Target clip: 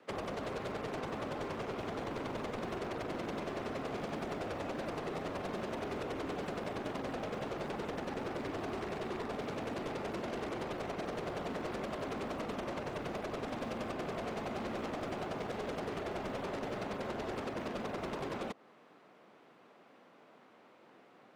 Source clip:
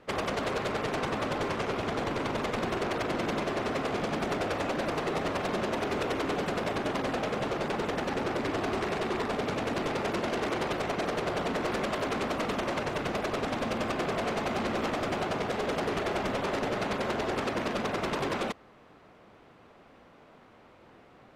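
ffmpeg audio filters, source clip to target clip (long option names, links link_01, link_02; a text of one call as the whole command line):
ffmpeg -i in.wav -filter_complex "[0:a]acrossover=split=150|1600|2300[link_01][link_02][link_03][link_04];[link_01]acrusher=bits=7:mix=0:aa=0.000001[link_05];[link_05][link_02][link_03][link_04]amix=inputs=4:normalize=0,acrossover=split=220|950[link_06][link_07][link_08];[link_06]acompressor=threshold=-41dB:ratio=4[link_09];[link_07]acompressor=threshold=-34dB:ratio=4[link_10];[link_08]acompressor=threshold=-42dB:ratio=4[link_11];[link_09][link_10][link_11]amix=inputs=3:normalize=0,volume=-4.5dB" out.wav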